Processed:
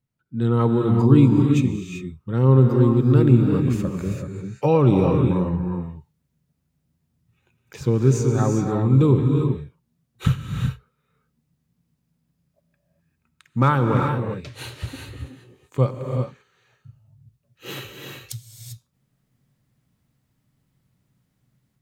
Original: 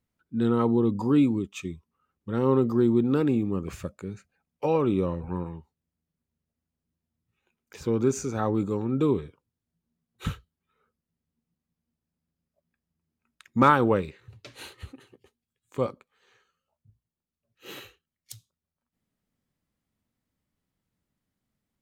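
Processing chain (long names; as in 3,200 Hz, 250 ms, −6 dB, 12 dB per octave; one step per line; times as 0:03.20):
parametric band 130 Hz +14.5 dB 0.47 octaves
automatic gain control gain up to 11.5 dB
reverb whose tail is shaped and stops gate 420 ms rising, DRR 2.5 dB
level −4 dB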